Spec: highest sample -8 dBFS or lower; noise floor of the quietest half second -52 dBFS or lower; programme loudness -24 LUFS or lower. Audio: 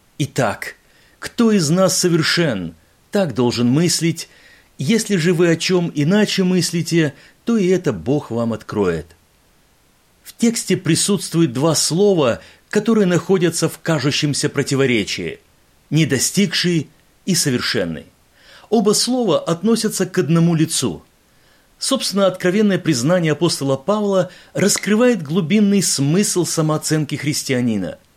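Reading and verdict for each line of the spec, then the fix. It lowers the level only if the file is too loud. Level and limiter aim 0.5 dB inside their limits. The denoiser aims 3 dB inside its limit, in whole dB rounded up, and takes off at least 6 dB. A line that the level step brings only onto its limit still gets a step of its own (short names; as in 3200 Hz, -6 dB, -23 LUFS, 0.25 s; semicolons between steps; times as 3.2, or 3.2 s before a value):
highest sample -5.0 dBFS: fail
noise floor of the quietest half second -56 dBFS: OK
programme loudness -17.5 LUFS: fail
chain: gain -7 dB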